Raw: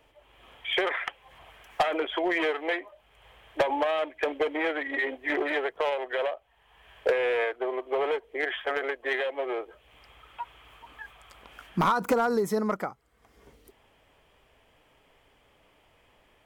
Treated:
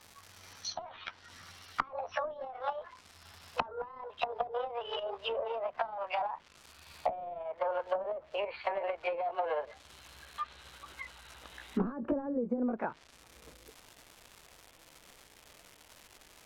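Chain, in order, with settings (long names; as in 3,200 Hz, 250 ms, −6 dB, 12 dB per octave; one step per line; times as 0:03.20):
pitch glide at a constant tempo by +11 semitones ending unshifted
surface crackle 420 per second −41 dBFS
treble cut that deepens with the level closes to 320 Hz, closed at −24 dBFS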